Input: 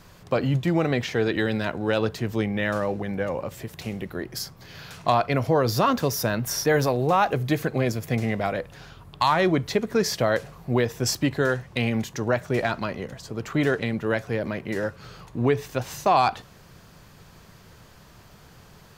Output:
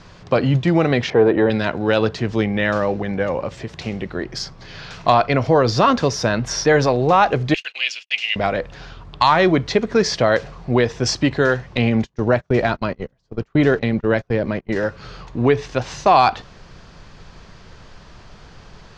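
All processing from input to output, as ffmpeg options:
ffmpeg -i in.wav -filter_complex "[0:a]asettb=1/sr,asplit=3[link_01][link_02][link_03];[link_01]atrim=end=1.104[link_04];[link_02]atrim=start=1.1:end=1.5,asetpts=PTS-STARTPTS,afade=type=in:duration=0.004:curve=qsin,afade=type=out:start_time=0.396:duration=0.004:curve=qsin,aemphasis=mode=reproduction:type=bsi,acontrast=54,bandpass=frequency=640:width_type=q:width=1.2[link_05];[link_03]atrim=start=1.496[link_06];[link_04][link_05]acrossfade=duration=0.004:curve1=hsin:curve2=qsin[link_07];[link_07][link_06]acrossfade=duration=0.004:curve1=qsin:curve2=hsin,asettb=1/sr,asplit=3[link_08][link_09][link_10];[link_08]atrim=end=7.544[link_11];[link_09]atrim=start=7.54:end=8.36,asetpts=PTS-STARTPTS,afade=type=in:duration=0.004:curve=qsin,afade=type=out:start_time=0.816:duration=0.004:curve=qsin,agate=range=-59dB:threshold=-33dB:ratio=16:release=100:detection=peak,highpass=frequency=2800:width_type=q:width=11[link_12];[link_10]atrim=start=8.356[link_13];[link_11][link_12]acrossfade=duration=0.004:curve1=hsin:curve2=qsin[link_14];[link_14][link_13]acrossfade=duration=0.004:curve1=qsin:curve2=hsin,asettb=1/sr,asplit=3[link_15][link_16][link_17];[link_15]atrim=end=11.774[link_18];[link_16]atrim=start=11.77:end=14.76,asetpts=PTS-STARTPTS,afade=type=in:duration=0.004:curve=qsin,afade=type=out:start_time=2.986:duration=0.004:curve=qsin,agate=range=-32dB:threshold=-32dB:ratio=16:release=100:detection=peak,tiltshelf=frequency=650:gain=3[link_19];[link_17]atrim=start=14.756[link_20];[link_18][link_19]acrossfade=duration=0.004:curve1=hsin:curve2=qsin[link_21];[link_21][link_20]acrossfade=duration=0.004:curve1=qsin:curve2=hsin,lowpass=frequency=6000:width=0.5412,lowpass=frequency=6000:width=1.3066,asubboost=boost=3:cutoff=52,volume=6.5dB" out.wav

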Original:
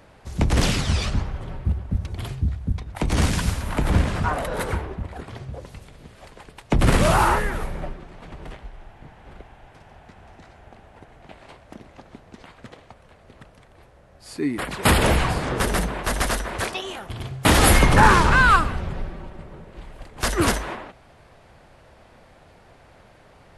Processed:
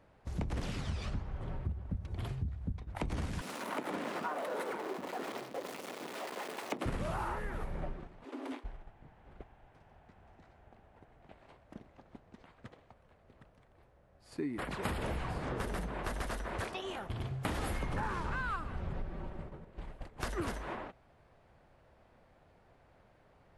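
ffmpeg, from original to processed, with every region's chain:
ffmpeg -i in.wav -filter_complex "[0:a]asettb=1/sr,asplit=3[link_01][link_02][link_03];[link_01]atrim=end=3.414[link_04];[link_02]atrim=start=3.41:end=6.86,asetpts=PTS-STARTPTS,afade=type=in:duration=0.004:curve=qsin,afade=type=out:start_time=3.446:duration=0.004:curve=qsin,aeval=exprs='val(0)+0.5*0.0355*sgn(val(0))':channel_layout=same,highpass=frequency=260:width=0.5412,highpass=frequency=260:width=1.3066,bandreject=frequency=1600:width=25[link_05];[link_03]atrim=start=6.856[link_06];[link_04][link_05]acrossfade=duration=0.004:curve1=hsin:curve2=qsin[link_07];[link_07][link_06]acrossfade=duration=0.004:curve1=qsin:curve2=hsin,asettb=1/sr,asplit=3[link_08][link_09][link_10];[link_08]atrim=end=8.244[link_11];[link_09]atrim=start=8.24:end=8.64,asetpts=PTS-STARTPTS,afade=type=in:duration=0.004:curve=qsin,afade=type=out:start_time=0.396:duration=0.004:curve=qsin,highshelf=frequency=3800:gain=9,afreqshift=230,volume=28.5dB,asoftclip=hard,volume=-28.5dB[link_12];[link_10]atrim=start=8.636[link_13];[link_11][link_12]acrossfade=duration=0.004:curve1=hsin:curve2=qsin[link_14];[link_14][link_13]acrossfade=duration=0.004:curve1=qsin:curve2=hsin,acompressor=threshold=-29dB:ratio=6,agate=range=-8dB:threshold=-39dB:ratio=16:detection=peak,highshelf=frequency=2800:gain=-8.5,volume=-4.5dB" out.wav

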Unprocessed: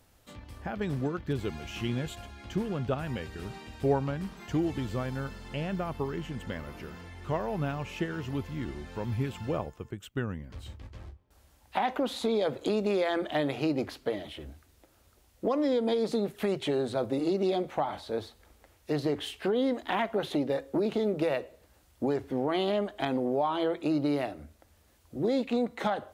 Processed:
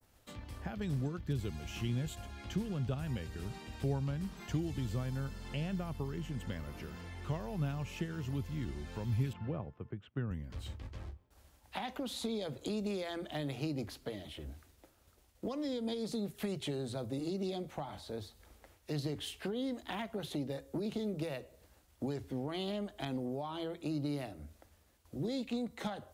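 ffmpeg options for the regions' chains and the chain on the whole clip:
ffmpeg -i in.wav -filter_complex "[0:a]asettb=1/sr,asplit=3[link_01][link_02][link_03];[link_01]atrim=end=9.334[link_04];[link_02]atrim=start=9.33:end=10.31,asetpts=PTS-STARTPTS,afade=type=in:duration=0.004:curve=qsin,afade=type=out:start_time=0.976:duration=0.004:curve=qsin,highpass=100,lowpass=2100,aemphasis=mode=reproduction:type=50fm[link_05];[link_03]atrim=start=10.306[link_06];[link_04][link_05]acrossfade=duration=0.004:curve1=hsin:curve2=qsin[link_07];[link_07][link_06]acrossfade=duration=0.004:curve1=qsin:curve2=hsin,agate=range=-33dB:threshold=-58dB:ratio=3:detection=peak,adynamicequalizer=threshold=0.00282:dfrequency=3400:dqfactor=0.76:tfrequency=3400:tqfactor=0.76:attack=5:release=100:ratio=0.375:range=2:mode=cutabove:tftype=bell,acrossover=split=190|3000[link_08][link_09][link_10];[link_09]acompressor=threshold=-50dB:ratio=2[link_11];[link_08][link_11][link_10]amix=inputs=3:normalize=0" out.wav

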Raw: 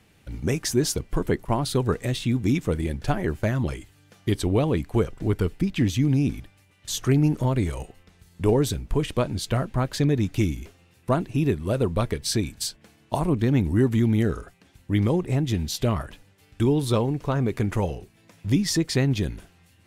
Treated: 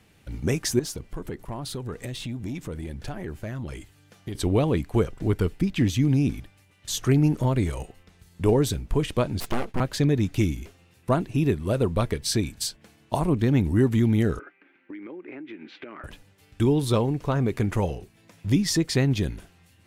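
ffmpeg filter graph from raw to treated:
ffmpeg -i in.wav -filter_complex "[0:a]asettb=1/sr,asplit=3[link_01][link_02][link_03];[link_01]atrim=end=0.794[link_04];[link_02]atrim=start=0.79:end=4.35,asetpts=PTS-STARTPTS,afade=type=in:duration=0.004:curve=qsin,afade=type=out:start_time=3.556:duration=0.004:curve=qsin,acompressor=threshold=-30dB:ratio=3:attack=3.2:release=140:knee=1:detection=peak,aeval=exprs='(tanh(15.8*val(0)+0.2)-tanh(0.2))/15.8':channel_layout=same[link_05];[link_03]atrim=start=4.346[link_06];[link_04][link_05]acrossfade=duration=0.004:curve1=hsin:curve2=qsin[link_07];[link_07][link_06]acrossfade=duration=0.004:curve1=qsin:curve2=hsin,asettb=1/sr,asplit=3[link_08][link_09][link_10];[link_08]atrim=end=9.404[link_11];[link_09]atrim=start=9.4:end=9.8,asetpts=PTS-STARTPTS,afade=type=in:duration=0.004:curve=qsin,afade=type=out:start_time=0.396:duration=0.004:curve=qsin,agate=range=-33dB:threshold=-40dB:ratio=3:release=100:detection=peak,aeval=exprs='abs(val(0))':channel_layout=same[link_12];[link_10]atrim=start=9.796[link_13];[link_11][link_12]acrossfade=duration=0.004:curve1=hsin:curve2=qsin[link_14];[link_14][link_13]acrossfade=duration=0.004:curve1=qsin:curve2=hsin,asettb=1/sr,asplit=3[link_15][link_16][link_17];[link_15]atrim=end=14.394[link_18];[link_16]atrim=start=14.39:end=16.04,asetpts=PTS-STARTPTS,afade=type=in:duration=0.004:curve=qsin,afade=type=out:start_time=1.646:duration=0.004:curve=qsin,highpass=frequency=290:width=0.5412,highpass=frequency=290:width=1.3066,equalizer=frequency=310:width_type=q:width=4:gain=7,equalizer=frequency=470:width_type=q:width=4:gain=-5,equalizer=frequency=690:width_type=q:width=4:gain=-8,equalizer=frequency=1000:width_type=q:width=4:gain=-5,equalizer=frequency=1500:width_type=q:width=4:gain=6,equalizer=frequency=2300:width_type=q:width=4:gain=8,lowpass=frequency=2400:width=0.5412,lowpass=frequency=2400:width=1.3066,acompressor=threshold=-35dB:ratio=20:attack=3.2:release=140:knee=1:detection=peak[link_19];[link_17]atrim=start=16.036[link_20];[link_18][link_19]acrossfade=duration=0.004:curve1=hsin:curve2=qsin[link_21];[link_21][link_20]acrossfade=duration=0.004:curve1=qsin:curve2=hsin" out.wav

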